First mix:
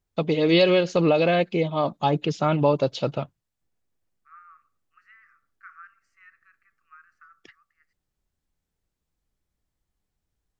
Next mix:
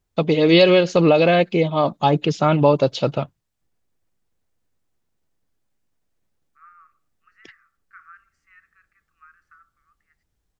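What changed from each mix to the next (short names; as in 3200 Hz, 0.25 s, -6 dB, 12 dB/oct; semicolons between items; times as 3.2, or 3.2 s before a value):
first voice +5.0 dB; second voice: entry +2.30 s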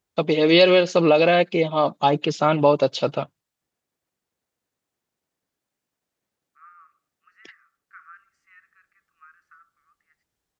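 master: add HPF 300 Hz 6 dB/oct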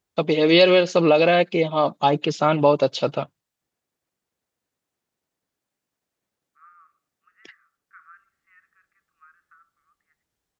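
second voice: add air absorption 420 m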